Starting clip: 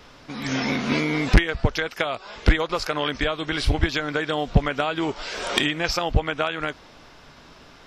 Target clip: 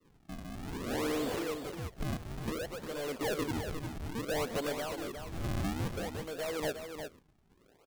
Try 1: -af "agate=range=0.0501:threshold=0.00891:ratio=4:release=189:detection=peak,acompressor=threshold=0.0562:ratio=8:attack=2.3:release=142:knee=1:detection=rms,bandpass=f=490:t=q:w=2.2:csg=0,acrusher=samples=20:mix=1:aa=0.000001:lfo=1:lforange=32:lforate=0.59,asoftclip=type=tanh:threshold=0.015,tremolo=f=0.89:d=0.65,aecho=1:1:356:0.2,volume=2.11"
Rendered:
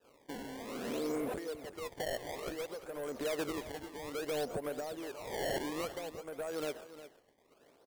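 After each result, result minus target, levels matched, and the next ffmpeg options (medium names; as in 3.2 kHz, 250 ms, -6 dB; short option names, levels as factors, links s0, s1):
compression: peak gain reduction +14.5 dB; decimation with a swept rate: distortion -10 dB; echo-to-direct -6.5 dB
-af "agate=range=0.0501:threshold=0.00891:ratio=4:release=189:detection=peak,bandpass=f=490:t=q:w=2.2:csg=0,acrusher=samples=20:mix=1:aa=0.000001:lfo=1:lforange=32:lforate=0.59,asoftclip=type=tanh:threshold=0.015,tremolo=f=0.89:d=0.65,aecho=1:1:356:0.2,volume=2.11"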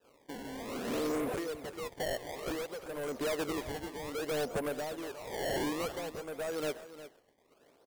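decimation with a swept rate: distortion -11 dB; echo-to-direct -6.5 dB
-af "agate=range=0.0501:threshold=0.00891:ratio=4:release=189:detection=peak,bandpass=f=490:t=q:w=2.2:csg=0,acrusher=samples=54:mix=1:aa=0.000001:lfo=1:lforange=86.4:lforate=0.59,asoftclip=type=tanh:threshold=0.015,tremolo=f=0.89:d=0.65,aecho=1:1:356:0.2,volume=2.11"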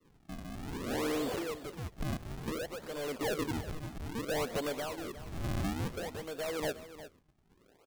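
echo-to-direct -6.5 dB
-af "agate=range=0.0501:threshold=0.00891:ratio=4:release=189:detection=peak,bandpass=f=490:t=q:w=2.2:csg=0,acrusher=samples=54:mix=1:aa=0.000001:lfo=1:lforange=86.4:lforate=0.59,asoftclip=type=tanh:threshold=0.015,tremolo=f=0.89:d=0.65,aecho=1:1:356:0.422,volume=2.11"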